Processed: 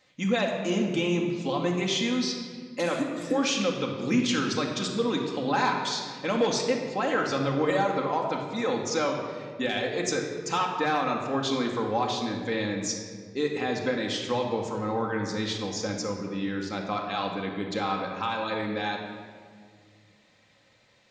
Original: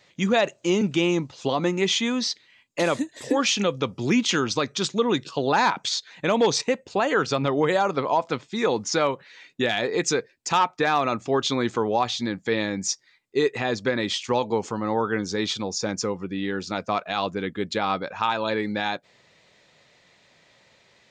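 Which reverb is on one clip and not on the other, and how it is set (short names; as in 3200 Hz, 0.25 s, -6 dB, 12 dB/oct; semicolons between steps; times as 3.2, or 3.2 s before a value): shoebox room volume 2700 m³, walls mixed, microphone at 2.1 m; gain -7 dB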